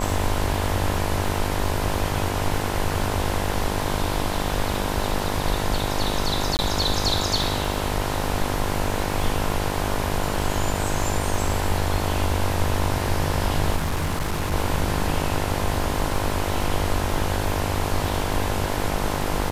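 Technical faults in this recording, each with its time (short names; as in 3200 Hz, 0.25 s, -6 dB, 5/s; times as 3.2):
buzz 50 Hz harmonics 21 -28 dBFS
crackle 41/s -31 dBFS
6.57–6.59 gap 19 ms
13.76–14.54 clipped -20 dBFS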